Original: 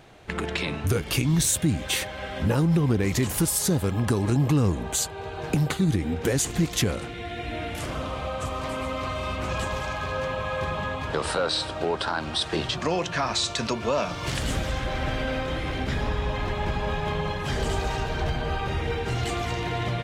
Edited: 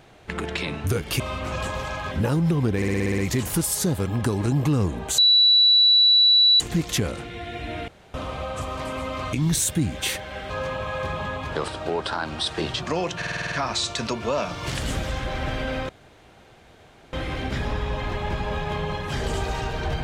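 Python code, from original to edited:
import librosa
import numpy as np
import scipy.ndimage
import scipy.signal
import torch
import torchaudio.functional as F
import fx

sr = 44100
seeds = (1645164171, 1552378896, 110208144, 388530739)

y = fx.edit(x, sr, fx.swap(start_s=1.2, length_s=1.17, other_s=9.17, other_length_s=0.91),
    fx.stutter(start_s=3.02, slice_s=0.06, count=8),
    fx.bleep(start_s=5.02, length_s=1.42, hz=3940.0, db=-12.5),
    fx.room_tone_fill(start_s=7.72, length_s=0.26),
    fx.cut(start_s=11.26, length_s=0.37),
    fx.stutter(start_s=13.12, slice_s=0.05, count=8),
    fx.insert_room_tone(at_s=15.49, length_s=1.24), tone=tone)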